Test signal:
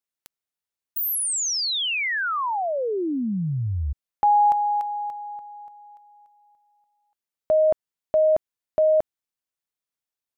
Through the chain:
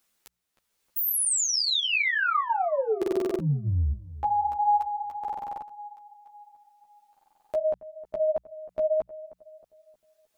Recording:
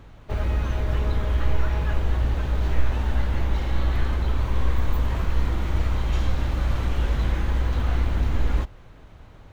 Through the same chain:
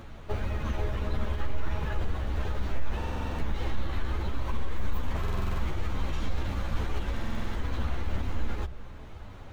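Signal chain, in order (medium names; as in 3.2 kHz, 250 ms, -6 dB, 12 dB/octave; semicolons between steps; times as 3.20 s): in parallel at -3 dB: compression, threshold -30 dBFS; on the sum: peak limiter -17.5 dBFS; hum notches 60/120/180 Hz; filtered feedback delay 312 ms, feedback 30%, low-pass 1.4 kHz, level -16.5 dB; upward compressor 1.5:1, threshold -33 dBFS; buffer glitch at 2.97/5.19/7.12 s, samples 2048, times 8; three-phase chorus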